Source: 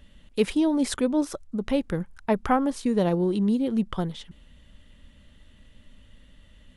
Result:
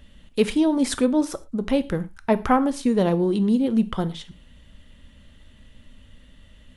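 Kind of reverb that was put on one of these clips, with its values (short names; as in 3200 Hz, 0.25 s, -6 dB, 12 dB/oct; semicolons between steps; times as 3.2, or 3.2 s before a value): non-linear reverb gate 0.14 s falling, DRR 12 dB; gain +3 dB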